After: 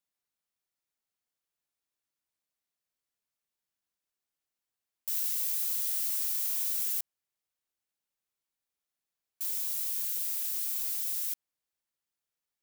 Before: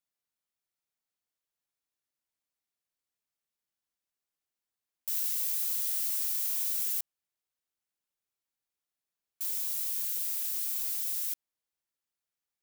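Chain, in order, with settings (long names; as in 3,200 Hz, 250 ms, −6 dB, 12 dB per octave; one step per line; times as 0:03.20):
0:06.06–0:07.00: low-shelf EQ 330 Hz +10.5 dB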